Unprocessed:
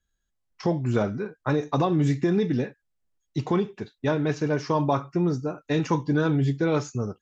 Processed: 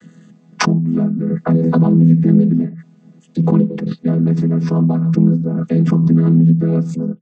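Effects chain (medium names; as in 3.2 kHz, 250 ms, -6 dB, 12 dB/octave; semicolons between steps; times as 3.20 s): vocoder on a held chord major triad, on E3; peaking EQ 170 Hz +14 dB 2.1 oct; swell ahead of each attack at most 27 dB/s; trim -1.5 dB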